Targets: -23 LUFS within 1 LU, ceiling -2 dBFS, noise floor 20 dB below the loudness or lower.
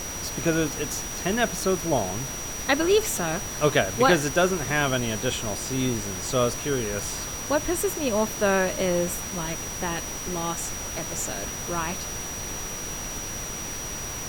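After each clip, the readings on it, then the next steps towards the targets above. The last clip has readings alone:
steady tone 5.8 kHz; tone level -34 dBFS; noise floor -34 dBFS; noise floor target -46 dBFS; loudness -26.0 LUFS; peak level -5.5 dBFS; loudness target -23.0 LUFS
-> band-stop 5.8 kHz, Q 30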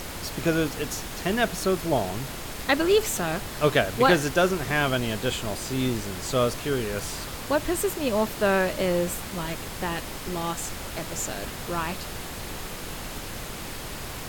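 steady tone not found; noise floor -36 dBFS; noise floor target -47 dBFS
-> noise print and reduce 11 dB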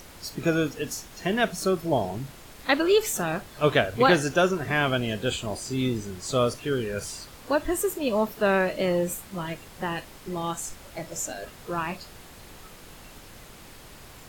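noise floor -47 dBFS; loudness -26.5 LUFS; peak level -6.0 dBFS; loudness target -23.0 LUFS
-> trim +3.5 dB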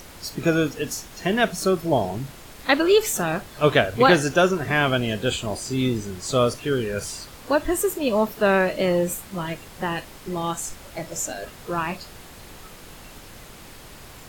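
loudness -23.0 LUFS; peak level -2.5 dBFS; noise floor -44 dBFS

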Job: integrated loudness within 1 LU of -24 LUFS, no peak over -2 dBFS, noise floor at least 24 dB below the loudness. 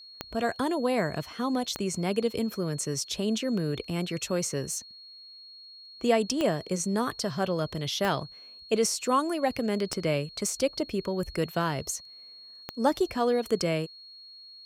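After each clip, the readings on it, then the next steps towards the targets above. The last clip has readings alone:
clicks found 6; steady tone 4.3 kHz; tone level -46 dBFS; loudness -29.0 LUFS; peak level -10.5 dBFS; loudness target -24.0 LUFS
-> de-click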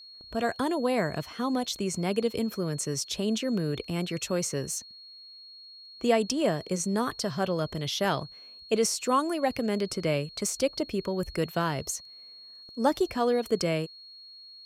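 clicks found 0; steady tone 4.3 kHz; tone level -46 dBFS
-> band-stop 4.3 kHz, Q 30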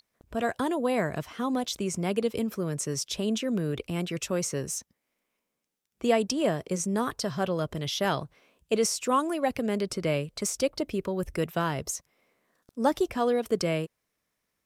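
steady tone not found; loudness -29.0 LUFS; peak level -11.0 dBFS; loudness target -24.0 LUFS
-> trim +5 dB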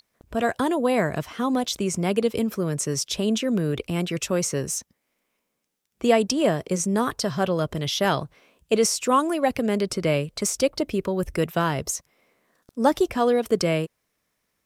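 loudness -24.0 LUFS; peak level -6.0 dBFS; noise floor -76 dBFS

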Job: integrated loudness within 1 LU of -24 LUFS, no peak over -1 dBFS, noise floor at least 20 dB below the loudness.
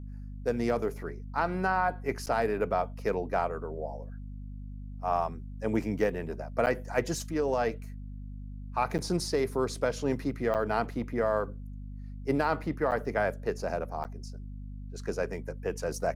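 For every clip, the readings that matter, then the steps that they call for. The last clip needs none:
dropouts 6; longest dropout 8.7 ms; hum 50 Hz; highest harmonic 250 Hz; hum level -38 dBFS; loudness -31.0 LUFS; peak level -13.0 dBFS; loudness target -24.0 LUFS
-> interpolate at 2.26/6.66/8.98/10.54/12.91/14.04 s, 8.7 ms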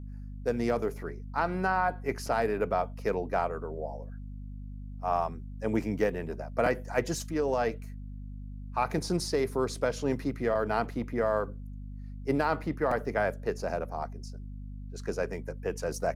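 dropouts 0; hum 50 Hz; highest harmonic 250 Hz; hum level -38 dBFS
-> de-hum 50 Hz, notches 5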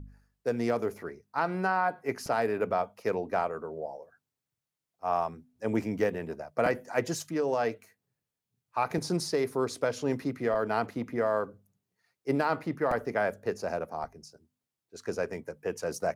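hum not found; loudness -31.5 LUFS; peak level -13.5 dBFS; loudness target -24.0 LUFS
-> trim +7.5 dB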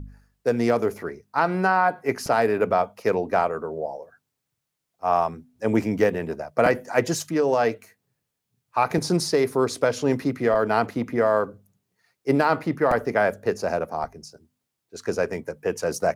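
loudness -24.0 LUFS; peak level -6.0 dBFS; noise floor -81 dBFS

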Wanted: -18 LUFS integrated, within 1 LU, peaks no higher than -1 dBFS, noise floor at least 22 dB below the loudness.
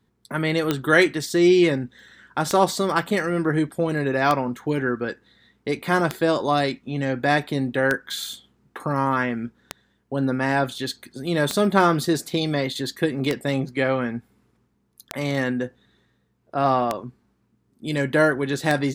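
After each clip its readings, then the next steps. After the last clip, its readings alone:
clicks found 11; loudness -23.0 LUFS; peak level -2.5 dBFS; loudness target -18.0 LUFS
-> de-click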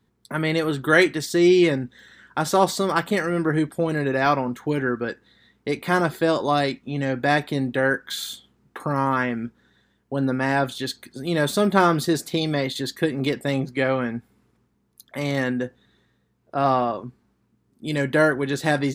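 clicks found 0; loudness -23.0 LUFS; peak level -2.5 dBFS; loudness target -18.0 LUFS
-> trim +5 dB; peak limiter -1 dBFS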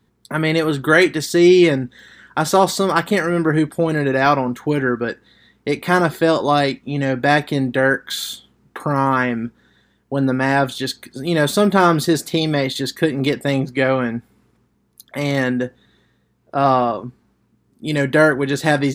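loudness -18.0 LUFS; peak level -1.0 dBFS; noise floor -63 dBFS

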